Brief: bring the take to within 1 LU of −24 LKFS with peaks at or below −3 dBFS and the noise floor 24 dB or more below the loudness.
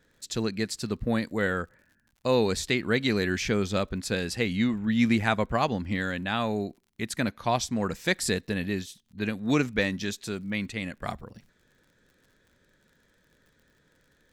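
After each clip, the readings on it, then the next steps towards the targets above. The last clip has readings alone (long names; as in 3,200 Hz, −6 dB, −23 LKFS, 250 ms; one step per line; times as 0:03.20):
crackle rate 51 per second; integrated loudness −28.5 LKFS; sample peak −8.0 dBFS; target loudness −24.0 LKFS
→ click removal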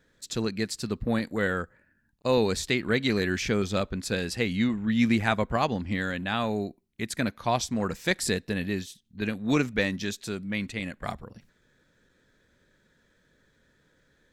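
crackle rate 0 per second; integrated loudness −28.5 LKFS; sample peak −8.0 dBFS; target loudness −24.0 LKFS
→ level +4.5 dB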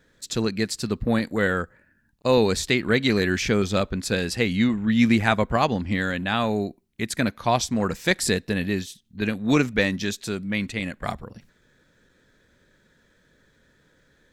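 integrated loudness −24.0 LKFS; sample peak −3.5 dBFS; background noise floor −64 dBFS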